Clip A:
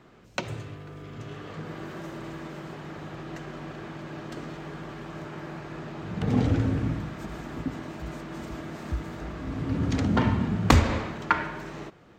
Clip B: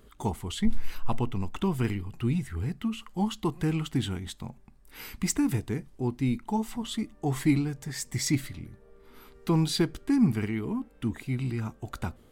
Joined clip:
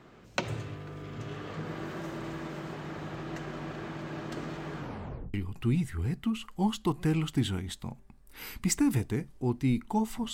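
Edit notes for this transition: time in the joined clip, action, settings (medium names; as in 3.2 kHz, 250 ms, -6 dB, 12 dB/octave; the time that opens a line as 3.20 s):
clip A
4.77 s: tape stop 0.57 s
5.34 s: go over to clip B from 1.92 s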